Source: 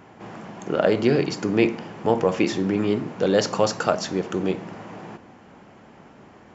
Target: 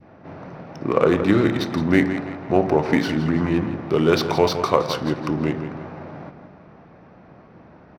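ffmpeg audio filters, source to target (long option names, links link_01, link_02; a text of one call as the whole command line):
ffmpeg -i in.wav -filter_complex "[0:a]adynamicequalizer=threshold=0.0178:dfrequency=1400:dqfactor=0.76:tfrequency=1400:tqfactor=0.76:attack=5:release=100:ratio=0.375:range=2:mode=boostabove:tftype=bell,asetrate=36162,aresample=44100,asplit=2[link_01][link_02];[link_02]aecho=0:1:166|332|498|664:0.316|0.133|0.0558|0.0234[link_03];[link_01][link_03]amix=inputs=2:normalize=0,adynamicsmooth=sensitivity=5.5:basefreq=3400,volume=1dB" out.wav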